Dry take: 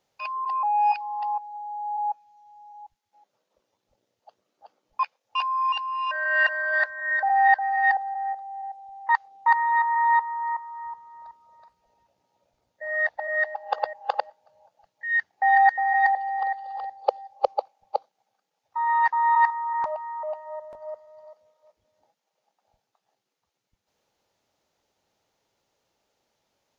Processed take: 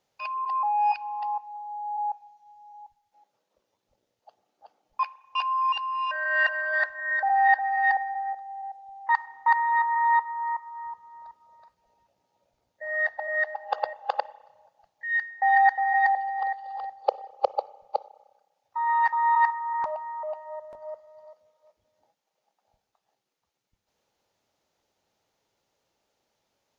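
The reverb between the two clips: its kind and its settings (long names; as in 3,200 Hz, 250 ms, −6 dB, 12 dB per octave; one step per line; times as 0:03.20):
spring reverb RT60 1.1 s, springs 30/51 ms, chirp 50 ms, DRR 18 dB
level −1.5 dB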